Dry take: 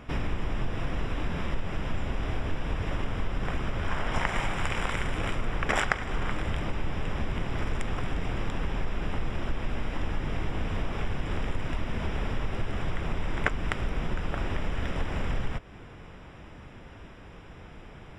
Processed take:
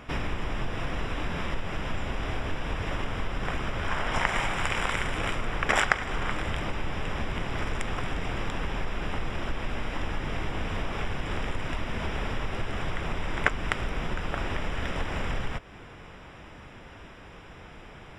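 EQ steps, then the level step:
low-shelf EQ 450 Hz −6 dB
+4.0 dB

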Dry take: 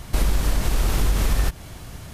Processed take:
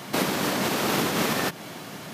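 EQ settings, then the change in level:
high-pass filter 180 Hz 24 dB per octave
parametric band 9,400 Hz −6.5 dB 1.2 octaves
+6.0 dB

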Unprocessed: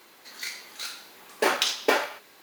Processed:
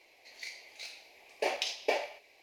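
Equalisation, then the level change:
drawn EQ curve 110 Hz 0 dB, 160 Hz −17 dB, 690 Hz +4 dB, 1,400 Hz −20 dB, 2,300 Hz +8 dB, 3,400 Hz −4 dB, 5,100 Hz +1 dB, 8,000 Hz −4 dB, 14,000 Hz +3 dB
dynamic equaliser 2,300 Hz, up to −6 dB, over −41 dBFS, Q 3.8
high-frequency loss of the air 59 metres
−6.0 dB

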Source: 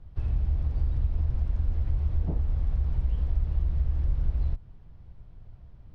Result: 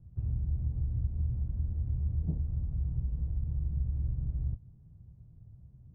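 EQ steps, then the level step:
resonant band-pass 130 Hz, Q 1.4
+2.0 dB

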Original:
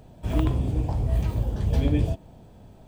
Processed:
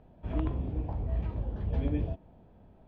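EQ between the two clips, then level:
low-pass filter 2,500 Hz 12 dB per octave
high-frequency loss of the air 89 metres
parametric band 120 Hz −7 dB 0.34 octaves
−7.0 dB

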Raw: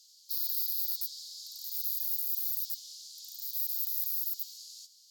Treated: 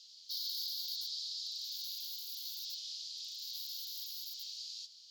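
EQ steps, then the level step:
high-frequency loss of the air 240 metres
+14.0 dB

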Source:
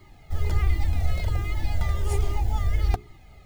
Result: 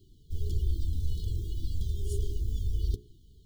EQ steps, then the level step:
linear-phase brick-wall band-stop 460–2,900 Hz
−6.5 dB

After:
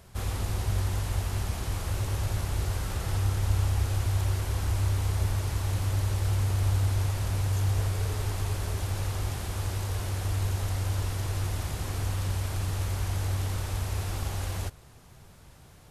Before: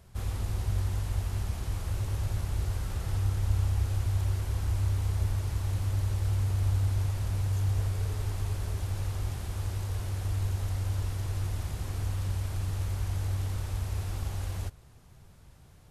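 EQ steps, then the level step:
low-shelf EQ 180 Hz −6.5 dB
+6.5 dB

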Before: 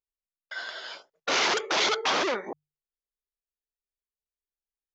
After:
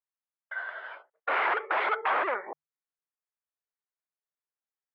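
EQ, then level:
high-pass filter 680 Hz 12 dB per octave
low-pass filter 2,000 Hz 24 dB per octave
high-frequency loss of the air 110 metres
+3.0 dB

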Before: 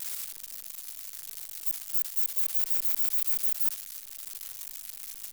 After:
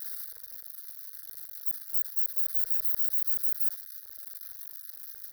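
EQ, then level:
high-pass filter 220 Hz 6 dB per octave
phaser with its sweep stopped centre 790 Hz, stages 6
phaser with its sweep stopped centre 1,600 Hz, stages 8
0.0 dB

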